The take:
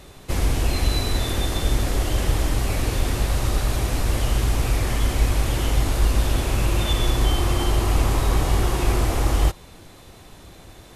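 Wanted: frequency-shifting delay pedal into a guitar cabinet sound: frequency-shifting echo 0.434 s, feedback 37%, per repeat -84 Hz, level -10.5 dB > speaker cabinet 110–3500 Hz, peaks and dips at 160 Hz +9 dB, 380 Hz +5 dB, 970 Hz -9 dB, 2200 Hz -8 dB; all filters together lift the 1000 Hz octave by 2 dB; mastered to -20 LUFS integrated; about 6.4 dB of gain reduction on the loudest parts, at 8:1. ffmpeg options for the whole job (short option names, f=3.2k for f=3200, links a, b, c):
-filter_complex "[0:a]equalizer=f=1k:t=o:g=7.5,acompressor=threshold=-19dB:ratio=8,asplit=5[a][b][c][d][e];[b]adelay=434,afreqshift=-84,volume=-10.5dB[f];[c]adelay=868,afreqshift=-168,volume=-19.1dB[g];[d]adelay=1302,afreqshift=-252,volume=-27.8dB[h];[e]adelay=1736,afreqshift=-336,volume=-36.4dB[i];[a][f][g][h][i]amix=inputs=5:normalize=0,highpass=110,equalizer=f=160:t=q:w=4:g=9,equalizer=f=380:t=q:w=4:g=5,equalizer=f=970:t=q:w=4:g=-9,equalizer=f=2.2k:t=q:w=4:g=-8,lowpass=f=3.5k:w=0.5412,lowpass=f=3.5k:w=1.3066,volume=9dB"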